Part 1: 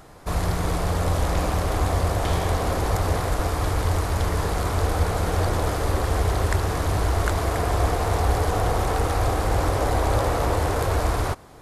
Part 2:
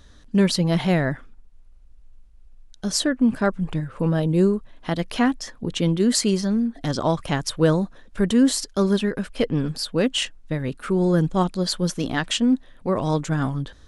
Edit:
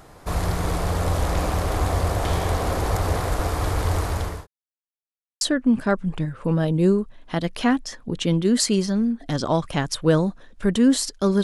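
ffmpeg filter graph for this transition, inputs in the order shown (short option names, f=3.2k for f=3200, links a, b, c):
-filter_complex "[0:a]apad=whole_dur=11.43,atrim=end=11.43,asplit=2[a][b];[a]atrim=end=4.47,asetpts=PTS-STARTPTS,afade=t=out:st=3.96:d=0.51:c=qsin[c];[b]atrim=start=4.47:end=5.41,asetpts=PTS-STARTPTS,volume=0[d];[1:a]atrim=start=2.96:end=8.98,asetpts=PTS-STARTPTS,afade=t=in:d=0.004:c=hsin[e];[c][d][e]concat=n=3:v=0:a=1"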